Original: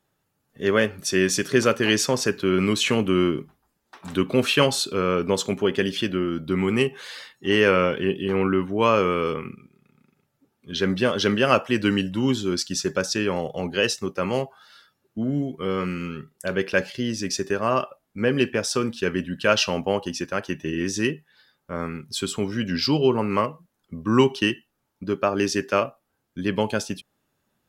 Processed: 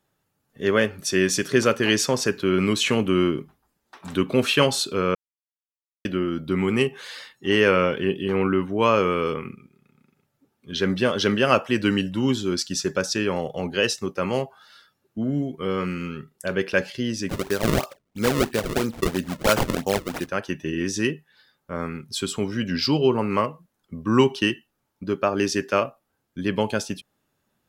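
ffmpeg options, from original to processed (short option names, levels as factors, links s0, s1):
-filter_complex "[0:a]asettb=1/sr,asplit=3[s0][s1][s2];[s0]atrim=end=17.294[s3];[s1]atrim=start=17.29:end=20.29,asetpts=PTS-STARTPTS,afade=t=in:d=0.004:c=qsin,afade=t=out:st=2.996:d=0.004:c=qsin,acrusher=samples=32:mix=1:aa=0.000001:lfo=1:lforange=51.2:lforate=3[s4];[s2]atrim=start=20.286[s5];[s3][s4]acrossfade=d=0.004:c1=hsin:c2=qsin[s6];[s6][s5]acrossfade=d=0.004:c1=qsin:c2=hsin,asplit=3[s7][s8][s9];[s7]atrim=end=5.15,asetpts=PTS-STARTPTS,afade=t=out:st=5.146:d=0.004:c=hsin[s10];[s8]atrim=start=5.15:end=6.05,asetpts=PTS-STARTPTS,volume=0[s11];[s9]atrim=start=6.05,asetpts=PTS-STARTPTS,afade=t=in:d=0.004:c=hsin[s12];[s10][s11][s12]concat=n=3:v=0:a=1"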